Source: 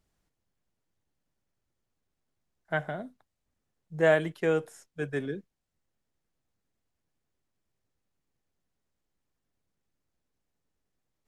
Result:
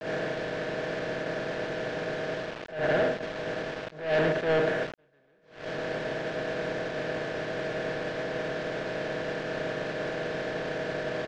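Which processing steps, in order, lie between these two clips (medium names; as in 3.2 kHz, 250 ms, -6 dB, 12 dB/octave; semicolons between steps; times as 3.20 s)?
spectral levelling over time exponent 0.2; in parallel at -2 dB: gain riding within 5 dB 0.5 s; on the sum: bass shelf 180 Hz +4.5 dB; expander -17 dBFS; on a send at -20.5 dB: comb 1.6 ms, depth 39% + reverberation RT60 0.55 s, pre-delay 56 ms; on the sum: saturation -21 dBFS, distortion -5 dB; bit crusher 6-bit; Bessel low-pass 3.4 kHz, order 4; attacks held to a fixed rise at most 120 dB/s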